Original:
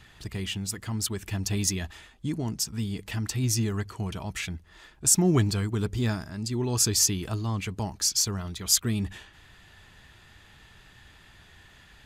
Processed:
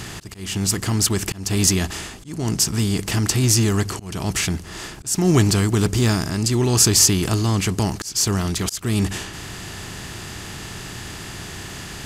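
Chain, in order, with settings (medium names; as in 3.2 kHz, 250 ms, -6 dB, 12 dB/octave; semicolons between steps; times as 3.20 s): spectral levelling over time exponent 0.6; slow attack 296 ms; trim +5.5 dB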